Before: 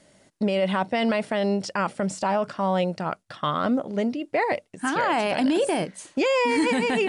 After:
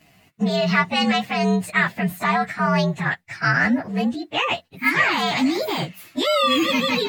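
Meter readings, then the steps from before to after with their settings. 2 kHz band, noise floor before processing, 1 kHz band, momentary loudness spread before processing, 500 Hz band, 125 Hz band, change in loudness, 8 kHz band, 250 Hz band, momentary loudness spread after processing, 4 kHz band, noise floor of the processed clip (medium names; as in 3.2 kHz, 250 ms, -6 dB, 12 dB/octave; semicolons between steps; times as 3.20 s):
+8.5 dB, -63 dBFS, +3.0 dB, 6 LU, -1.0 dB, +7.5 dB, +4.0 dB, +1.0 dB, +3.0 dB, 7 LU, +9.5 dB, -56 dBFS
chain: frequency axis rescaled in octaves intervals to 116%; ten-band graphic EQ 125 Hz +8 dB, 500 Hz -3 dB, 2 kHz +12 dB, 4 kHz +3 dB; trim +3 dB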